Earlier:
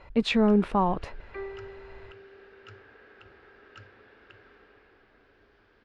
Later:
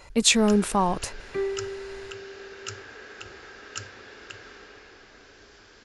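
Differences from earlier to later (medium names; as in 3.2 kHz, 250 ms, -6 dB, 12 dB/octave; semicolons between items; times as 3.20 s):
first sound +7.5 dB; second sound: remove high-pass 640 Hz; master: remove distance through air 380 m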